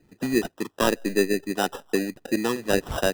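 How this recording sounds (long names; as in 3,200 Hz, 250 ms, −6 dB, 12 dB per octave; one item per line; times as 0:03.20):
phaser sweep stages 8, 1.1 Hz, lowest notch 680–1,500 Hz
aliases and images of a low sample rate 2,200 Hz, jitter 0%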